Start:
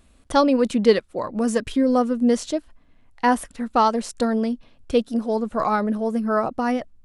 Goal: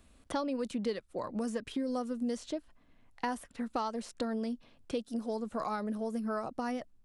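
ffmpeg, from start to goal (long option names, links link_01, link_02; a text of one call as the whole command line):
ffmpeg -i in.wav -filter_complex "[0:a]acrossover=split=110|4200[link_01][link_02][link_03];[link_01]acompressor=threshold=-55dB:ratio=4[link_04];[link_02]acompressor=threshold=-29dB:ratio=4[link_05];[link_03]acompressor=threshold=-48dB:ratio=4[link_06];[link_04][link_05][link_06]amix=inputs=3:normalize=0,volume=-4.5dB" out.wav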